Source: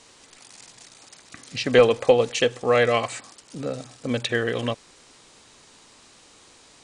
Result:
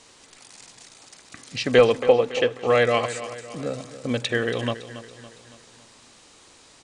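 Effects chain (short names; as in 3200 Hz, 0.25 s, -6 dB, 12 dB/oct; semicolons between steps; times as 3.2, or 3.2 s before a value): 2.02–2.67 tone controls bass -5 dB, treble -13 dB; on a send: feedback echo 0.28 s, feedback 49%, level -13.5 dB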